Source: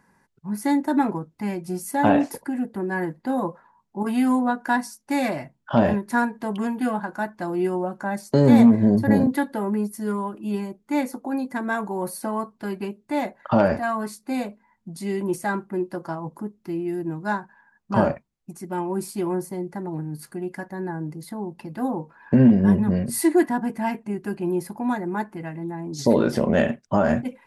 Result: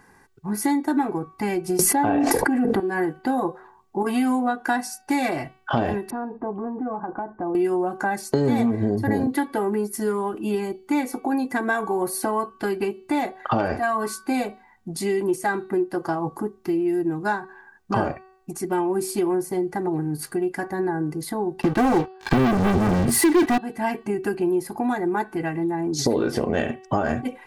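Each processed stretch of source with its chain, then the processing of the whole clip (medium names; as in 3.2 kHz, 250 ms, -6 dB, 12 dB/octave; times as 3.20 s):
1.79–2.80 s: treble shelf 3.3 kHz -10 dB + level flattener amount 100%
6.10–7.55 s: low-pass 1.1 kHz 24 dB/octave + compression 5:1, threshold -33 dBFS
21.62–23.58 s: treble shelf 3.6 kHz -10 dB + waveshaping leveller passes 5
whole clip: comb 2.6 ms, depth 52%; de-hum 377.2 Hz, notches 13; compression 3:1, threshold -30 dBFS; trim +8 dB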